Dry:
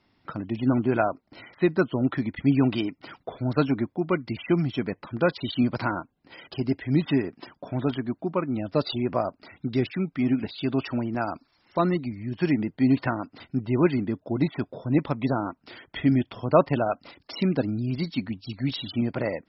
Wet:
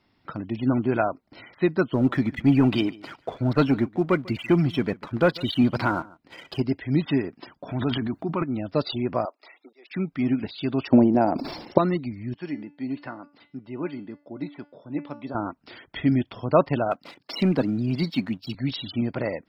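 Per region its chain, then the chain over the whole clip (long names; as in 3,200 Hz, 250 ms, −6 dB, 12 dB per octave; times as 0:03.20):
0:01.93–0:06.62: leveller curve on the samples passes 1 + single-tap delay 145 ms −22 dB
0:07.68–0:08.44: transient designer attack 0 dB, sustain +10 dB + parametric band 530 Hz −8 dB 0.33 octaves
0:09.25–0:09.91: Bessel high-pass filter 610 Hz, order 8 + notch comb filter 1,500 Hz + volume swells 594 ms
0:10.88–0:11.78: drawn EQ curve 100 Hz 0 dB, 200 Hz +8 dB, 490 Hz +10 dB, 860 Hz +5 dB, 1,300 Hz −5 dB, 7,300 Hz 0 dB + transient designer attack +6 dB, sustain −7 dB + level that may fall only so fast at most 55 dB per second
0:12.34–0:15.35: high-pass filter 160 Hz + tuned comb filter 290 Hz, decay 0.39 s, mix 70%
0:16.91–0:18.55: high-pass filter 120 Hz 24 dB per octave + leveller curve on the samples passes 1
whole clip: no processing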